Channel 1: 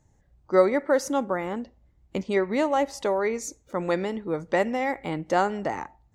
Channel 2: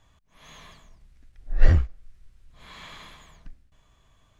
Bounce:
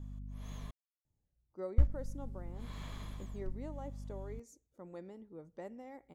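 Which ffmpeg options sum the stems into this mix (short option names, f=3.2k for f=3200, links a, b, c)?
-filter_complex "[0:a]adelay=1050,volume=-19dB[a];[1:a]aeval=exprs='val(0)+0.00631*(sin(2*PI*50*n/s)+sin(2*PI*2*50*n/s)/2+sin(2*PI*3*50*n/s)/3+sin(2*PI*4*50*n/s)/4+sin(2*PI*5*50*n/s)/5)':c=same,volume=1dB,asplit=3[b][c][d];[b]atrim=end=0.71,asetpts=PTS-STARTPTS,afade=t=out:st=0.706:d=0.004:c=hsin[e];[c]atrim=start=0.71:end=1.78,asetpts=PTS-STARTPTS,volume=0[f];[d]atrim=start=1.78,asetpts=PTS-STARTPTS,afade=t=in:d=0.004:c=hsin[g];[e][f][g]concat=n=3:v=0:a=1[h];[a][h]amix=inputs=2:normalize=0,equalizer=f=2.4k:w=0.35:g=-12"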